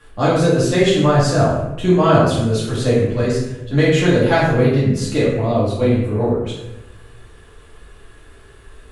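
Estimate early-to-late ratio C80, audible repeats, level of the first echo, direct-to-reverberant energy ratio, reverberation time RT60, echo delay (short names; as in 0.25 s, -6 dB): 4.0 dB, none, none, -9.5 dB, 0.95 s, none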